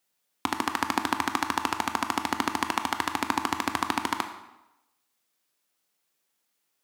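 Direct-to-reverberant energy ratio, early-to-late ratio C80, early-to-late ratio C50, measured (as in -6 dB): 7.0 dB, 11.5 dB, 10.0 dB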